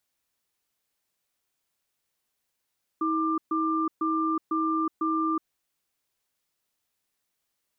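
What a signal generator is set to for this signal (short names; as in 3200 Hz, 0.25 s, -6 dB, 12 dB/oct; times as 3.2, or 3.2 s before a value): cadence 320 Hz, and 1190 Hz, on 0.37 s, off 0.13 s, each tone -26 dBFS 2.37 s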